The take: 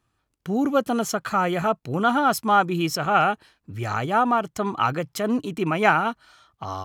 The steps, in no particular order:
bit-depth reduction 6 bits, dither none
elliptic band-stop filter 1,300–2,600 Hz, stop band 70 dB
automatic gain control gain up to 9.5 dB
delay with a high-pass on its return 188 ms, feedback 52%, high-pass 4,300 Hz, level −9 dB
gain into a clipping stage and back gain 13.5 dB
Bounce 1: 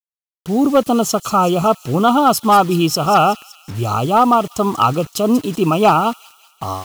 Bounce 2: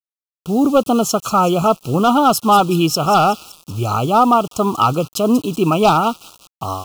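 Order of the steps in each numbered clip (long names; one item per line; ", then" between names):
elliptic band-stop filter, then gain into a clipping stage and back, then automatic gain control, then bit-depth reduction, then delay with a high-pass on its return
gain into a clipping stage and back, then automatic gain control, then delay with a high-pass on its return, then bit-depth reduction, then elliptic band-stop filter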